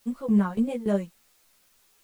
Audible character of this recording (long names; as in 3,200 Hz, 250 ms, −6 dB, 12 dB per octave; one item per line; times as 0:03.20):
tremolo saw down 3.5 Hz, depth 90%
a quantiser's noise floor 10 bits, dither triangular
a shimmering, thickened sound